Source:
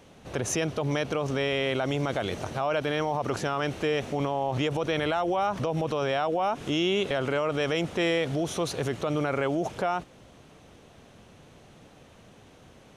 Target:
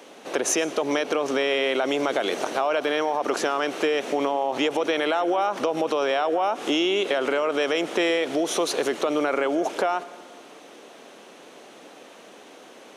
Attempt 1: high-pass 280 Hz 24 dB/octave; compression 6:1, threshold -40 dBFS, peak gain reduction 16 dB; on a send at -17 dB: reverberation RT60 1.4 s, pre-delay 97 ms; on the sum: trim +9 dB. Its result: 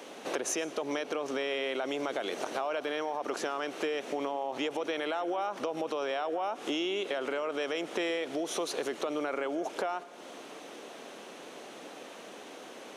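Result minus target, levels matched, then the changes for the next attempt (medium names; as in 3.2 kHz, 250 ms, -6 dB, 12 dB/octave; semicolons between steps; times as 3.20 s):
compression: peak gain reduction +9.5 dB
change: compression 6:1, threshold -28.5 dBFS, peak gain reduction 6.5 dB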